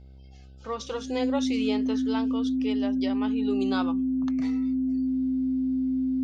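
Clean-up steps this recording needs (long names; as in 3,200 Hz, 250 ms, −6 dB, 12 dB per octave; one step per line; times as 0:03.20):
hum removal 66 Hz, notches 12
notch filter 260 Hz, Q 30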